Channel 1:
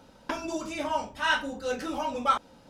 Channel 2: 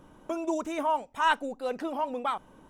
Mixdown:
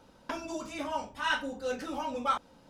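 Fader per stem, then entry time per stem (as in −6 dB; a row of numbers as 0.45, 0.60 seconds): −4.5, −11.5 decibels; 0.00, 0.00 seconds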